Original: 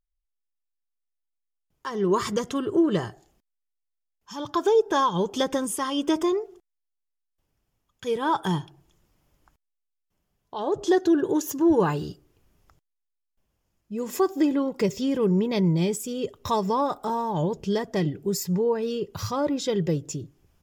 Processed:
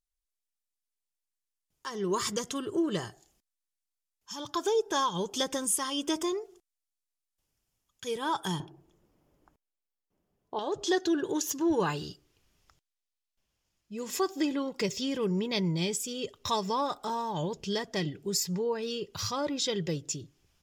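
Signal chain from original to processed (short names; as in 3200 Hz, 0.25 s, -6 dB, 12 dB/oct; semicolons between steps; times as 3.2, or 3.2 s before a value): bell 8200 Hz +12 dB 2.8 oct, from 8.6 s 370 Hz, from 10.59 s 4400 Hz; gain -8 dB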